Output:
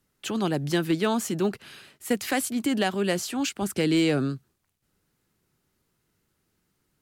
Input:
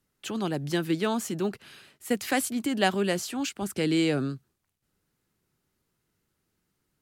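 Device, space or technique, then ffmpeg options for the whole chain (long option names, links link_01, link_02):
limiter into clipper: -af "alimiter=limit=-17dB:level=0:latency=1:release=391,asoftclip=type=hard:threshold=-19dB,volume=3.5dB"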